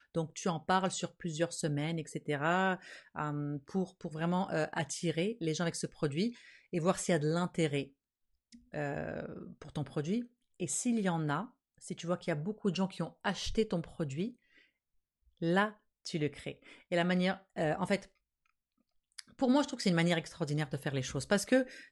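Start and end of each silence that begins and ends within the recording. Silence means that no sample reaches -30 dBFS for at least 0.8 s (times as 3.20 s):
7.81–8.76 s
14.25–15.42 s
17.96–19.19 s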